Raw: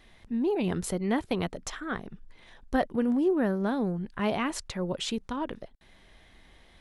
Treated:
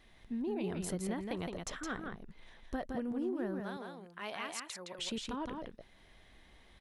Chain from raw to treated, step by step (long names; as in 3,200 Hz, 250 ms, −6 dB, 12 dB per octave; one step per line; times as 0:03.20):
0:03.60–0:04.98: high-pass filter 1,500 Hz 6 dB per octave
downward compressor 6 to 1, threshold −29 dBFS, peak gain reduction 9 dB
single-tap delay 165 ms −4.5 dB
level −5.5 dB